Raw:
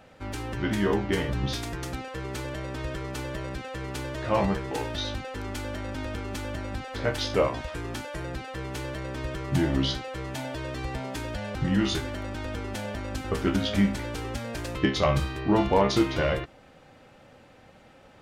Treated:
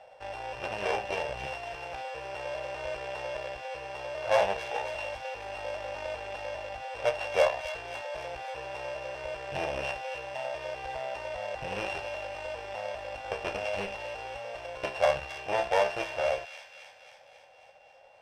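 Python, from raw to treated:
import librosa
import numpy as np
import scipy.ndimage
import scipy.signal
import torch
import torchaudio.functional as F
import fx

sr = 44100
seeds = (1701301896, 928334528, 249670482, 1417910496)

p1 = np.r_[np.sort(x[:len(x) // 16 * 16].reshape(-1, 16), axis=1).ravel(), x[len(x) // 16 * 16:]]
p2 = scipy.signal.sosfilt(scipy.signal.butter(2, 4500.0, 'lowpass', fs=sr, output='sos'), p1)
p3 = fx.peak_eq(p2, sr, hz=730.0, db=6.5, octaves=0.67)
p4 = p3 + 0.33 * np.pad(p3, (int(1.2 * sr / 1000.0), 0))[:len(p3)]
p5 = fx.rider(p4, sr, range_db=10, speed_s=2.0)
p6 = p4 + (p5 * 10.0 ** (0.0 / 20.0))
p7 = fx.tube_stage(p6, sr, drive_db=11.0, bias=0.8)
p8 = fx.low_shelf_res(p7, sr, hz=370.0, db=-12.5, q=3.0)
p9 = fx.echo_wet_highpass(p8, sr, ms=270, feedback_pct=63, hz=2300.0, wet_db=-7.0)
y = p9 * 10.0 ** (-8.5 / 20.0)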